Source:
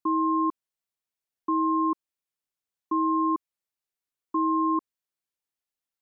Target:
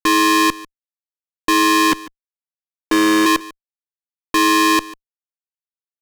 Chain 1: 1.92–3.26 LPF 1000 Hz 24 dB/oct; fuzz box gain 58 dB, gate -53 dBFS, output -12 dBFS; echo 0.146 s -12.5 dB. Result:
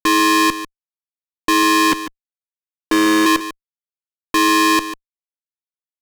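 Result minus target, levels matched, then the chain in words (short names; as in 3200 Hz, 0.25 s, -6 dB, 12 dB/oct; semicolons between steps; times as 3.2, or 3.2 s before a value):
echo-to-direct +7 dB
1.92–3.26 LPF 1000 Hz 24 dB/oct; fuzz box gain 58 dB, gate -53 dBFS, output -12 dBFS; echo 0.146 s -19.5 dB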